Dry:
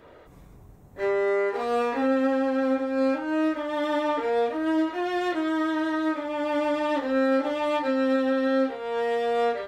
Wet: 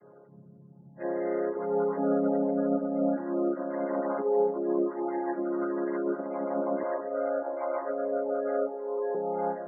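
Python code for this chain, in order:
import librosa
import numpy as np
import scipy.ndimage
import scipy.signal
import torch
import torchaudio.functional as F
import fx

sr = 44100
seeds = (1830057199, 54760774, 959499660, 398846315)

y = fx.chord_vocoder(x, sr, chord='major triad', root=49)
y = scipy.signal.sosfilt(scipy.signal.butter(4, 2500.0, 'lowpass', fs=sr, output='sos'), y)
y = fx.spec_gate(y, sr, threshold_db=-25, keep='strong')
y = fx.highpass(y, sr, hz=380.0, slope=24, at=(6.83, 9.15))
y = fx.echo_feedback(y, sr, ms=303, feedback_pct=56, wet_db=-18.5)
y = y * 10.0 ** (-3.0 / 20.0)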